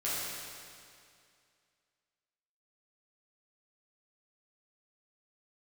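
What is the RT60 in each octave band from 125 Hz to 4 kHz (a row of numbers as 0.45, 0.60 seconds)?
2.3, 2.3, 2.3, 2.3, 2.3, 2.2 seconds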